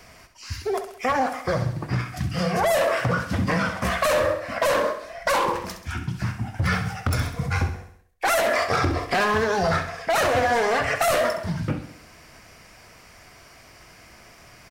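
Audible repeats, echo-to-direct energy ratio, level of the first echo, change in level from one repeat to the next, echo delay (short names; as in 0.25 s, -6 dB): 5, -8.5 dB, -10.0 dB, -6.0 dB, 66 ms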